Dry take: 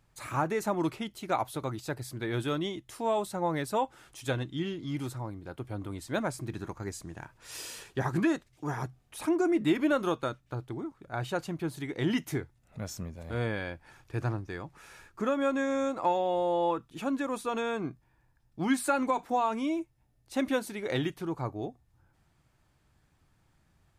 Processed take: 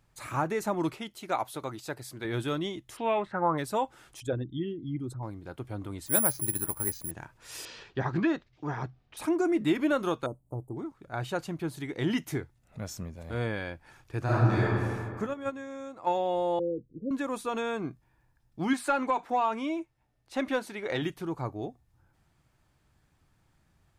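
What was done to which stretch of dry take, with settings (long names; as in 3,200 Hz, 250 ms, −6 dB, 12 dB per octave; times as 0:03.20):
0:00.94–0:02.25: low-shelf EQ 190 Hz −9.5 dB
0:02.96–0:03.57: low-pass with resonance 3,300 Hz → 1,100 Hz
0:04.20–0:05.23: spectral envelope exaggerated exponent 2
0:06.06–0:07.11: bad sample-rate conversion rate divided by 4×, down filtered, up zero stuff
0:07.65–0:09.17: low-pass filter 4,900 Hz 24 dB per octave
0:10.26–0:10.77: inverse Chebyshev band-stop filter 1,500–5,400 Hz
0:14.24–0:14.65: thrown reverb, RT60 2.1 s, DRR −10.5 dB
0:15.26–0:16.09: noise gate −26 dBFS, range −11 dB
0:16.59–0:17.11: Butterworth low-pass 540 Hz 96 dB per octave
0:18.73–0:21.02: mid-hump overdrive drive 8 dB, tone 2,600 Hz, clips at −15.5 dBFS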